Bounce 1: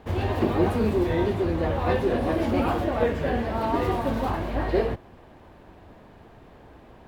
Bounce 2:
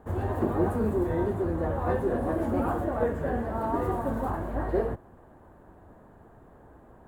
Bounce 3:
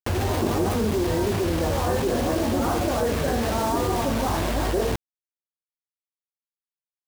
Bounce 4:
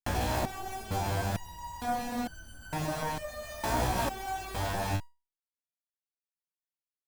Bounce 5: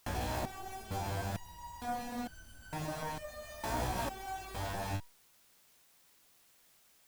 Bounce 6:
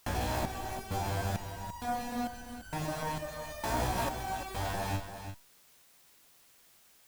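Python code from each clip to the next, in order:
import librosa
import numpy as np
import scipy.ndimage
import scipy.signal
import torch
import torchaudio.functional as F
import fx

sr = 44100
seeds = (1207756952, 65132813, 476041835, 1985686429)

y1 = fx.band_shelf(x, sr, hz=3500.0, db=-14.5, octaves=1.7)
y1 = y1 * 10.0 ** (-3.5 / 20.0)
y2 = fx.quant_dither(y1, sr, seeds[0], bits=6, dither='none')
y2 = fx.env_flatten(y2, sr, amount_pct=70)
y3 = fx.lower_of_two(y2, sr, delay_ms=1.2)
y3 = fx.resonator_held(y3, sr, hz=2.2, low_hz=62.0, high_hz=1500.0)
y3 = y3 * 10.0 ** (4.0 / 20.0)
y4 = fx.quant_dither(y3, sr, seeds[1], bits=10, dither='triangular')
y4 = y4 * 10.0 ** (-6.0 / 20.0)
y5 = y4 + 10.0 ** (-9.5 / 20.0) * np.pad(y4, (int(342 * sr / 1000.0), 0))[:len(y4)]
y5 = y5 * 10.0 ** (3.5 / 20.0)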